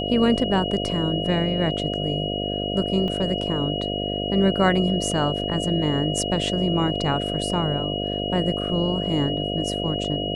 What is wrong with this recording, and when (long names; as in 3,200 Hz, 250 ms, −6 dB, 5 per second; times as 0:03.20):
mains buzz 50 Hz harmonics 14 −28 dBFS
whistle 2,900 Hz −29 dBFS
0:03.08: drop-out 2.7 ms